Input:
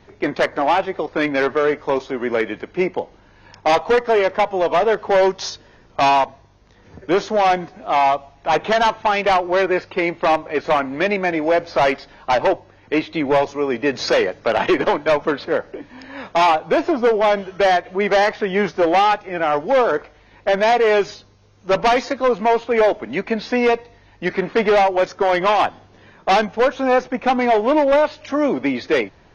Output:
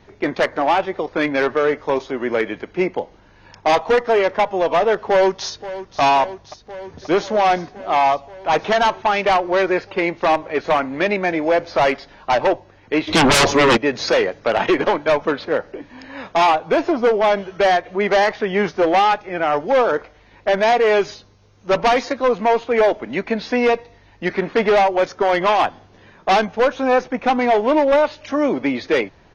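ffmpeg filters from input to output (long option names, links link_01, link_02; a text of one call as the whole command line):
ffmpeg -i in.wav -filter_complex "[0:a]asplit=2[link_01][link_02];[link_02]afade=type=in:start_time=5.07:duration=0.01,afade=type=out:start_time=6:duration=0.01,aecho=0:1:530|1060|1590|2120|2650|3180|3710|4240|4770|5300|5830|6360:0.188365|0.150692|0.120554|0.0964428|0.0771543|0.0617234|0.0493787|0.039503|0.0316024|0.0252819|0.0202255|0.0161804[link_03];[link_01][link_03]amix=inputs=2:normalize=0,asplit=3[link_04][link_05][link_06];[link_04]afade=type=out:start_time=13.07:duration=0.02[link_07];[link_05]aeval=exprs='0.335*sin(PI/2*4.47*val(0)/0.335)':channel_layout=same,afade=type=in:start_time=13.07:duration=0.02,afade=type=out:start_time=13.76:duration=0.02[link_08];[link_06]afade=type=in:start_time=13.76:duration=0.02[link_09];[link_07][link_08][link_09]amix=inputs=3:normalize=0" out.wav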